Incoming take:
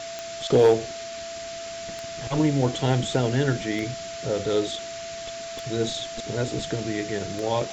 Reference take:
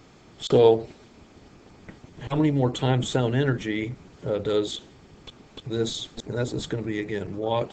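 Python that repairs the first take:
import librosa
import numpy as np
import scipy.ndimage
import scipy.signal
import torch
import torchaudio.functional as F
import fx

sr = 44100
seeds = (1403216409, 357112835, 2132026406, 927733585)

y = fx.fix_declip(x, sr, threshold_db=-10.0)
y = fx.fix_declick_ar(y, sr, threshold=10.0)
y = fx.notch(y, sr, hz=670.0, q=30.0)
y = fx.noise_reduce(y, sr, print_start_s=0.97, print_end_s=1.47, reduce_db=16.0)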